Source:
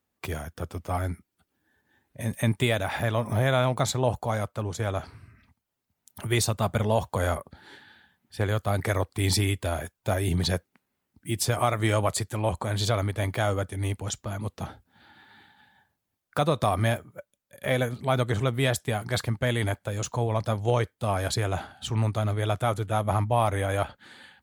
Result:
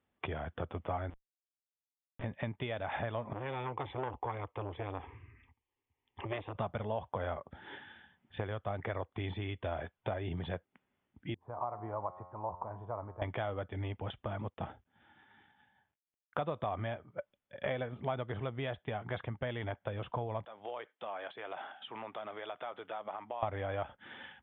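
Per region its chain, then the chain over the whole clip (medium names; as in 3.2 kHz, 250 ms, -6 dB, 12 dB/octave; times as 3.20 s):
1.10–2.24 s: block-companded coder 7-bit + Schmitt trigger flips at -36.5 dBFS
3.33–6.55 s: static phaser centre 950 Hz, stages 8 + transformer saturation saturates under 1.4 kHz
11.34–13.22 s: four-pole ladder low-pass 1.1 kHz, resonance 65% + feedback comb 90 Hz, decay 1.8 s
14.42–16.42 s: companding laws mixed up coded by A + distance through air 85 m
20.45–23.43 s: Bessel high-pass 290 Hz, order 4 + bass shelf 440 Hz -10 dB + compression 5:1, threshold -42 dBFS
whole clip: compression 6:1, threshold -36 dBFS; dynamic bell 760 Hz, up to +5 dB, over -54 dBFS, Q 0.79; Chebyshev low-pass 3.5 kHz, order 8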